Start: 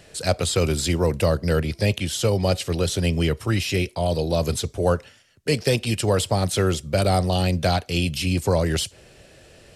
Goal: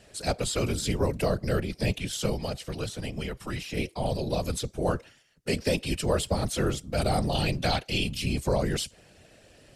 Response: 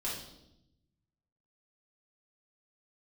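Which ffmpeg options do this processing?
-filter_complex "[0:a]asettb=1/sr,asplit=3[link_01][link_02][link_03];[link_01]atrim=end=2.334[link_04];[link_02]atrim=start=2.33:end=3.77,asetpts=PTS-STARTPTS,afade=type=in:duration=0.004:curve=qsin,afade=type=out:start_time=1.436:duration=0.004:curve=qsin,acrossover=split=210|620|1700[link_05][link_06][link_07][link_08];[link_05]acompressor=threshold=-28dB:ratio=4[link_09];[link_06]acompressor=threshold=-35dB:ratio=4[link_10];[link_07]acompressor=threshold=-30dB:ratio=4[link_11];[link_08]acompressor=threshold=-34dB:ratio=4[link_12];[link_09][link_10][link_11][link_12]amix=inputs=4:normalize=0[link_13];[link_03]atrim=start=3.766[link_14];[link_04][link_13]acrossfade=duration=0.004:curve1=hsin:curve2=qsin[link_15];[link_15][link_14]acrossfade=duration=0.004:curve1=qsin:curve2=hsin,asettb=1/sr,asplit=3[link_16][link_17][link_18];[link_16]atrim=end=7.354[link_19];[link_17]atrim=start=7.35:end=8.04,asetpts=PTS-STARTPTS,afade=type=in:duration=0.004:curve=qsin,afade=type=out:start_time=0.686:duration=0.004:curve=qsin,equalizer=frequency=2900:width_type=o:width=1.7:gain=5.5[link_20];[link_18]atrim=start=8.036[link_21];[link_19][link_20]acrossfade=duration=0.004:curve1=hsin:curve2=qsin[link_22];[link_22][link_21]acrossfade=duration=0.004:curve1=qsin:curve2=hsin,afftfilt=real='hypot(re,im)*cos(2*PI*random(0))':imag='hypot(re,im)*sin(2*PI*random(1))':win_size=512:overlap=0.75"

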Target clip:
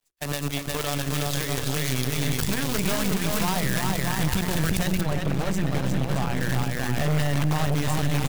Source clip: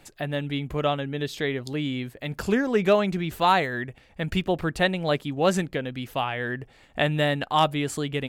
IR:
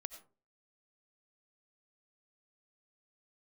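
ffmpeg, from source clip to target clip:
-filter_complex "[0:a]asoftclip=type=tanh:threshold=-22dB,acrusher=bits=6:dc=4:mix=0:aa=0.000001,bandreject=frequency=60:width_type=h:width=6,bandreject=frequency=120:width_type=h:width=6,bandreject=frequency=180:width_type=h:width=6,bandreject=frequency=240:width_type=h:width=6,bandreject=frequency=300:width_type=h:width=6,bandreject=frequency=360:width_type=h:width=6,bandreject=frequency=420:width_type=h:width=6,bandreject=frequency=480:width_type=h:width=6,bandreject=frequency=540:width_type=h:width=6,bandreject=frequency=600:width_type=h:width=6,aecho=1:1:360|630|832.5|984.4|1098:0.631|0.398|0.251|0.158|0.1,acrossover=split=86|790[link_01][link_02][link_03];[link_01]acompressor=threshold=-51dB:ratio=4[link_04];[link_02]acompressor=threshold=-34dB:ratio=4[link_05];[link_03]acompressor=threshold=-39dB:ratio=4[link_06];[link_04][link_05][link_06]amix=inputs=3:normalize=0,asubboost=boost=7.5:cutoff=140,aeval=exprs='0.133*(cos(1*acos(clip(val(0)/0.133,-1,1)))-cos(1*PI/2))+0.0596*(cos(5*acos(clip(val(0)/0.133,-1,1)))-cos(5*PI/2))+0.0473*(cos(7*acos(clip(val(0)/0.133,-1,1)))-cos(7*PI/2))':channel_layout=same,alimiter=level_in=2dB:limit=-24dB:level=0:latency=1:release=74,volume=-2dB,agate=range=-33dB:threshold=-37dB:ratio=16:detection=peak,aeval=exprs='0.0501*(cos(1*acos(clip(val(0)/0.0501,-1,1)))-cos(1*PI/2))+0.0158*(cos(2*acos(clip(val(0)/0.0501,-1,1)))-cos(2*PI/2))':channel_layout=same,asetnsamples=nb_out_samples=441:pad=0,asendcmd='5.01 highshelf g -4.5;6.41 highshelf g 3',highshelf=frequency=3500:gain=10,volume=6.5dB"

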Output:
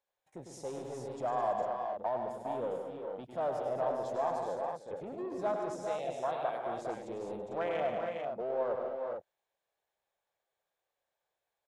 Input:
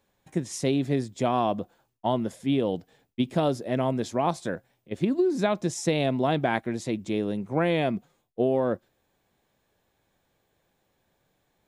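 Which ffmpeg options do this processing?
ffmpeg -i in.wav -filter_complex "[0:a]asettb=1/sr,asplit=3[link_01][link_02][link_03];[link_01]atrim=end=4.384[link_04];[link_02]atrim=start=4.38:end=4.97,asetpts=PTS-STARTPTS,afade=type=in:duration=0.004:curve=qsin,afade=type=out:start_time=0.586:duration=0.004:curve=qsin,lowpass=8800[link_05];[link_03]atrim=start=4.966[link_06];[link_04][link_05]acrossfade=duration=0.004:curve1=hsin:curve2=qsin[link_07];[link_07][link_06]acrossfade=duration=0.004:curve1=qsin:curve2=hsin,asettb=1/sr,asplit=3[link_08][link_09][link_10];[link_08]atrim=end=5.744[link_11];[link_09]atrim=start=5.74:end=6.65,asetpts=PTS-STARTPTS,afade=type=in:duration=0.004:curve=qsin,afade=type=out:start_time=0.906:duration=0.004:curve=qsin,acrossover=split=860|3400[link_12][link_13][link_14];[link_12]acompressor=threshold=-38dB:ratio=4[link_15];[link_13]acompressor=threshold=-33dB:ratio=4[link_16];[link_14]acompressor=threshold=-40dB:ratio=4[link_17];[link_15][link_16][link_17]amix=inputs=3:normalize=0[link_18];[link_10]atrim=start=6.646[link_19];[link_11][link_18]acrossfade=duration=0.004:curve1=hsin:curve2=qsin[link_20];[link_20][link_19]acrossfade=duration=0.004:curve1=qsin:curve2=hsin,afwtdn=0.0355,asplit=2[link_21][link_22];[link_22]asoftclip=type=tanh:threshold=-28dB,volume=-5.5dB[link_23];[link_21][link_23]amix=inputs=2:normalize=0,alimiter=limit=-21.5dB:level=0:latency=1:release=11,lowshelf=frequency=390:width_type=q:width=1.5:gain=-13.5,asplit=2[link_24][link_25];[link_25]aecho=0:1:102|148|211|332|407|449:0.473|0.355|0.355|0.15|0.473|0.447[link_26];[link_24][link_26]amix=inputs=2:normalize=0,volume=-4.5dB" out.wav

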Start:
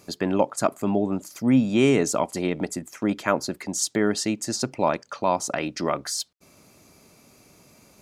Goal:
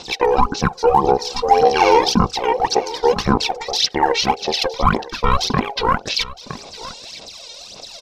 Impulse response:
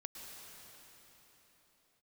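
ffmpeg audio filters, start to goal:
-filter_complex "[0:a]lowpass=frequency=7300:width_type=q:width=3.1,bass=frequency=250:gain=3,treble=frequency=4000:gain=11,bandreject=frequency=60:width_type=h:width=6,bandreject=frequency=120:width_type=h:width=6,bandreject=frequency=180:width_type=h:width=6,bandreject=frequency=240:width_type=h:width=6,bandreject=frequency=300:width_type=h:width=6,bandreject=frequency=360:width_type=h:width=6,acrossover=split=3800[link_01][link_02];[link_01]asubboost=boost=5:cutoff=74[link_03];[link_02]acompressor=threshold=-35dB:ratio=10[link_04];[link_03][link_04]amix=inputs=2:normalize=0,aeval=exprs='val(0)*sin(2*PI*900*n/s)':channel_layout=same,aphaser=in_gain=1:out_gain=1:delay=1.5:decay=0.76:speed=1.8:type=sinusoidal,asetrate=30296,aresample=44100,atempo=1.45565,asplit=2[link_05][link_06];[link_06]aecho=0:1:963:0.133[link_07];[link_05][link_07]amix=inputs=2:normalize=0,alimiter=level_in=8.5dB:limit=-1dB:release=50:level=0:latency=1,volume=-1dB"

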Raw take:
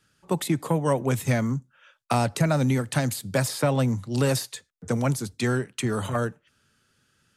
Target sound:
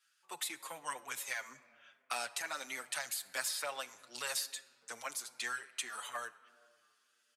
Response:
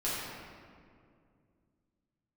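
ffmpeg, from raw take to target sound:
-filter_complex "[0:a]highpass=1400,asplit=2[link_01][link_02];[1:a]atrim=start_sample=2205,adelay=35[link_03];[link_02][link_03]afir=irnorm=-1:irlink=0,volume=-23.5dB[link_04];[link_01][link_04]amix=inputs=2:normalize=0,asplit=2[link_05][link_06];[link_06]adelay=6.9,afreqshift=-1.6[link_07];[link_05][link_07]amix=inputs=2:normalize=1,volume=-2.5dB"

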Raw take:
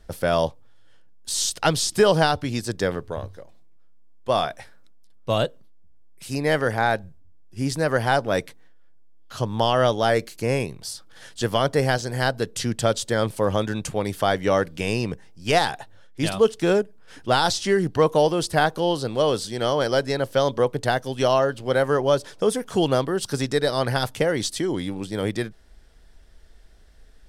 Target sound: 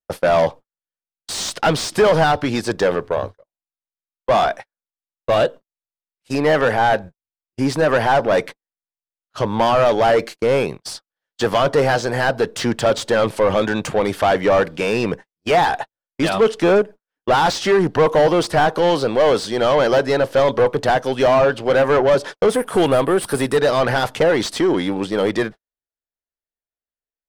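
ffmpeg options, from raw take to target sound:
ffmpeg -i in.wav -filter_complex "[0:a]agate=range=-52dB:threshold=-35dB:ratio=16:detection=peak,asettb=1/sr,asplit=3[link_01][link_02][link_03];[link_01]atrim=end=22.544[link_04];[link_02]atrim=start=22.54:end=23.57,asetpts=PTS-STARTPTS,afade=type=in:duration=0.004:curve=qsin,afade=type=out:start_time=1.026:duration=0.004:curve=qsin,highshelf=frequency=7800:width_type=q:width=3:gain=8.5[link_05];[link_03]atrim=start=23.566[link_06];[link_04][link_05]acrossfade=duration=0.004:curve1=hsin:curve2=qsin[link_07];[link_07][link_06]acrossfade=duration=0.004:curve1=qsin:curve2=hsin,asplit=2[link_08][link_09];[link_09]highpass=frequency=720:poles=1,volume=24dB,asoftclip=type=tanh:threshold=-5.5dB[link_10];[link_08][link_10]amix=inputs=2:normalize=0,lowpass=frequency=1300:poles=1,volume=-6dB" out.wav

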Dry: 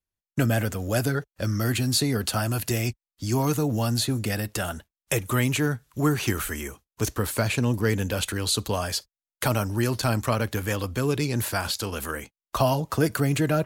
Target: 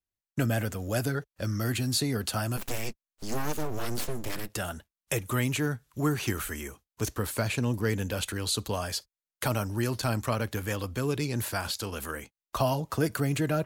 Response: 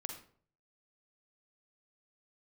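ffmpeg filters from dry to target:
-filter_complex "[0:a]asplit=3[link_01][link_02][link_03];[link_01]afade=type=out:start_time=2.56:duration=0.02[link_04];[link_02]aeval=exprs='abs(val(0))':channel_layout=same,afade=type=in:start_time=2.56:duration=0.02,afade=type=out:start_time=4.48:duration=0.02[link_05];[link_03]afade=type=in:start_time=4.48:duration=0.02[link_06];[link_04][link_05][link_06]amix=inputs=3:normalize=0,volume=-4.5dB"

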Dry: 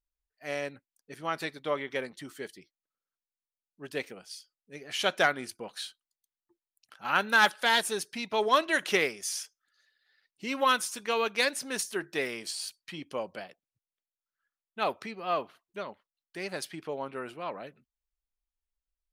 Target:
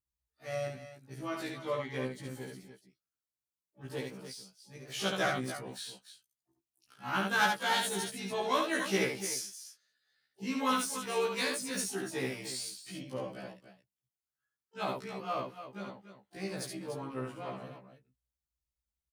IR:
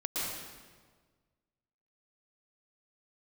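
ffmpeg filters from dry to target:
-filter_complex "[0:a]bass=frequency=250:gain=13,treble=frequency=4000:gain=13,asplit=2[link_01][link_02];[link_02]aecho=0:1:69.97|291.5:0.631|0.282[link_03];[link_01][link_03]amix=inputs=2:normalize=0,asplit=3[link_04][link_05][link_06];[link_05]asetrate=37084,aresample=44100,atempo=1.18921,volume=-15dB[link_07];[link_06]asetrate=88200,aresample=44100,atempo=0.5,volume=-15dB[link_08];[link_04][link_07][link_08]amix=inputs=3:normalize=0,highpass=53,highshelf=frequency=3400:gain=-9.5,afftfilt=real='re*1.73*eq(mod(b,3),0)':imag='im*1.73*eq(mod(b,3),0)':win_size=2048:overlap=0.75,volume=-4.5dB"

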